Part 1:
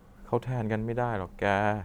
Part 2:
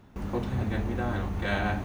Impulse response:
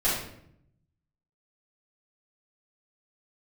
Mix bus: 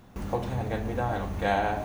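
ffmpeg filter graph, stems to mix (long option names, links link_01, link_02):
-filter_complex "[0:a]equalizer=frequency=720:width=2.2:gain=7,volume=-6.5dB,asplit=2[link_01][link_02];[link_02]volume=-17dB[link_03];[1:a]highshelf=frequency=4400:gain=7.5,acompressor=threshold=-29dB:ratio=6,volume=-1,volume=0.5dB[link_04];[2:a]atrim=start_sample=2205[link_05];[link_03][link_05]afir=irnorm=-1:irlink=0[link_06];[link_01][link_04][link_06]amix=inputs=3:normalize=0"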